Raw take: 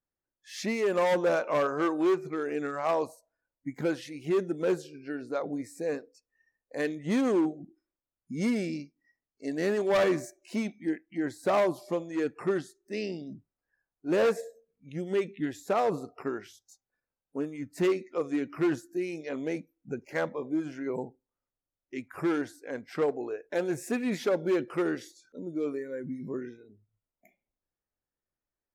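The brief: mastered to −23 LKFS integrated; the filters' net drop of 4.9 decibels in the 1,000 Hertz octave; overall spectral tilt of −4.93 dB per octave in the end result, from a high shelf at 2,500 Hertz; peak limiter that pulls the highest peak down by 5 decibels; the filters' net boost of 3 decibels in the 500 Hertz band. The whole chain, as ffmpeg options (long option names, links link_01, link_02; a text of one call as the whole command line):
ffmpeg -i in.wav -af "equalizer=frequency=500:width_type=o:gain=6,equalizer=frequency=1000:width_type=o:gain=-8.5,highshelf=frequency=2500:gain=-6.5,volume=7.5dB,alimiter=limit=-12.5dB:level=0:latency=1" out.wav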